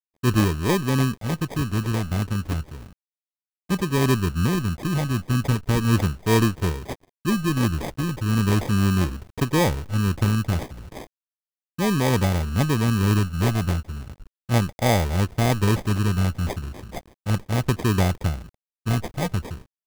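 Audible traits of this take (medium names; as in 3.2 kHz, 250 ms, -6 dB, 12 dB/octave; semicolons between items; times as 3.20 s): a quantiser's noise floor 8-bit, dither none; phasing stages 8, 0.35 Hz, lowest notch 480–1400 Hz; aliases and images of a low sample rate 1.4 kHz, jitter 0%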